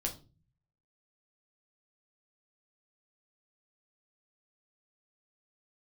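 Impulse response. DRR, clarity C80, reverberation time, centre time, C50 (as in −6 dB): 0.5 dB, 18.5 dB, 0.35 s, 16 ms, 13.5 dB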